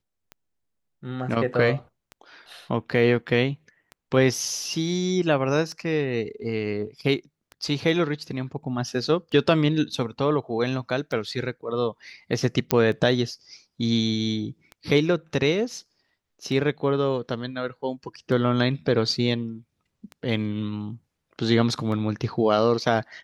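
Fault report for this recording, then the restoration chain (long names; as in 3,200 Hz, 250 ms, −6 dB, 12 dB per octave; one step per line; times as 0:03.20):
scratch tick 33 1/3 rpm −24 dBFS
0:12.71: click −4 dBFS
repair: click removal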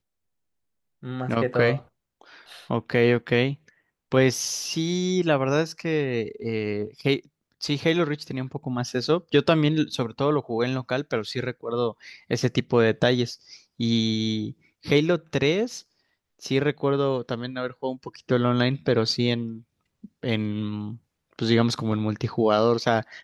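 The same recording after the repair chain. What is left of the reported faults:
none of them is left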